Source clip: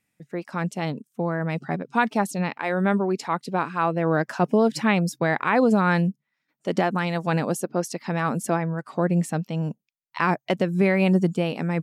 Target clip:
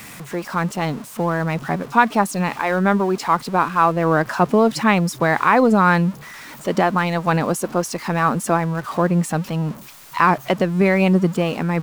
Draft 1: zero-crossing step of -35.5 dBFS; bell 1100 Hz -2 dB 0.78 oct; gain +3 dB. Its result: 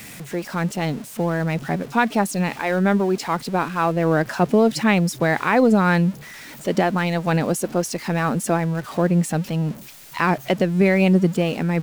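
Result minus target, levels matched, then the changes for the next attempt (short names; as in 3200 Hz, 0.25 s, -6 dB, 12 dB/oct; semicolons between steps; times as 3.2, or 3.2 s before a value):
1000 Hz band -4.0 dB
change: bell 1100 Hz +6.5 dB 0.78 oct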